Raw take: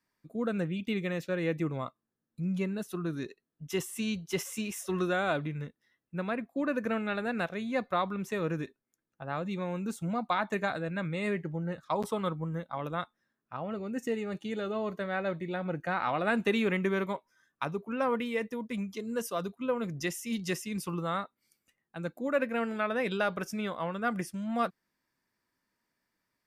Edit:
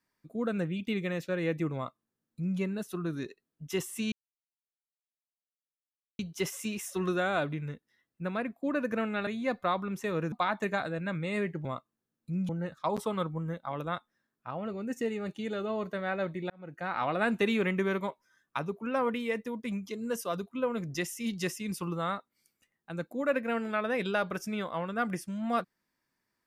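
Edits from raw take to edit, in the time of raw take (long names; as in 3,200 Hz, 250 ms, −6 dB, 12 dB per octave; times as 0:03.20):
0:01.75–0:02.59: duplicate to 0:11.55
0:04.12: splice in silence 2.07 s
0:07.20–0:07.55: remove
0:08.60–0:10.22: remove
0:15.56–0:16.11: fade in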